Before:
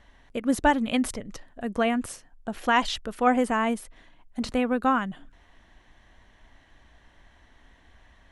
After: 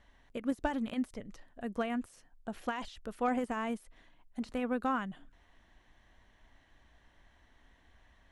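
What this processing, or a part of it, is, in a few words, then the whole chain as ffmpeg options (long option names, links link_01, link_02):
de-esser from a sidechain: -filter_complex "[0:a]asplit=2[link_01][link_02];[link_02]highpass=6600,apad=whole_len=366597[link_03];[link_01][link_03]sidechaincompress=threshold=-49dB:ratio=16:attack=1:release=30,volume=-7.5dB"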